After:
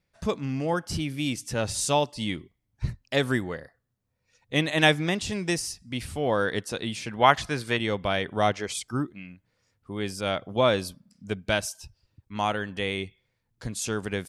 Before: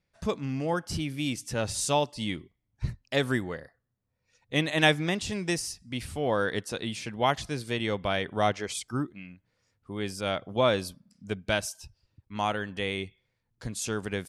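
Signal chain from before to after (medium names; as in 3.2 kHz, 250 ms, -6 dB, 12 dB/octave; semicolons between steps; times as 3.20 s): 7.11–7.77 s: peaking EQ 1.4 kHz +8 dB 1.8 oct; trim +2 dB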